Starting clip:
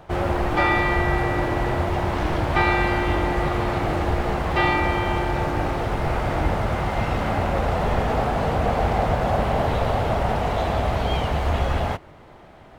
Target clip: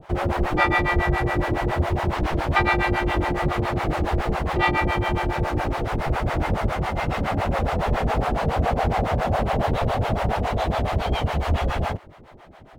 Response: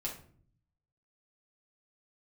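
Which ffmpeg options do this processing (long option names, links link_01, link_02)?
-filter_complex "[0:a]acrossover=split=510[link_01][link_02];[link_01]aeval=exprs='val(0)*(1-1/2+1/2*cos(2*PI*7.2*n/s))':channel_layout=same[link_03];[link_02]aeval=exprs='val(0)*(1-1/2-1/2*cos(2*PI*7.2*n/s))':channel_layout=same[link_04];[link_03][link_04]amix=inputs=2:normalize=0,volume=4dB"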